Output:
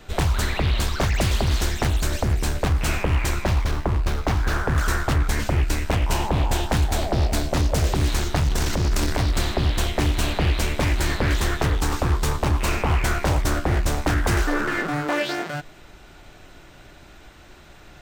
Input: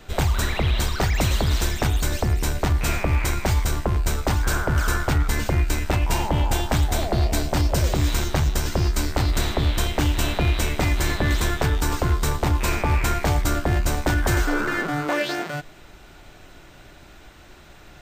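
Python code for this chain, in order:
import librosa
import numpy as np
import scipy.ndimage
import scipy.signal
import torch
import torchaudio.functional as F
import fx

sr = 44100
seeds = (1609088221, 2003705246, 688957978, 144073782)

y = fx.median_filter(x, sr, points=5, at=(3.44, 4.68))
y = fx.transient(y, sr, attack_db=-4, sustain_db=9, at=(8.48, 9.19))
y = fx.doppler_dist(y, sr, depth_ms=0.62)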